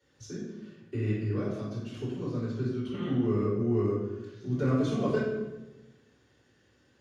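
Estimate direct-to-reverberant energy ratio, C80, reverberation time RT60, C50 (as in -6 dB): -13.0 dB, 3.0 dB, 1.1 s, 0.0 dB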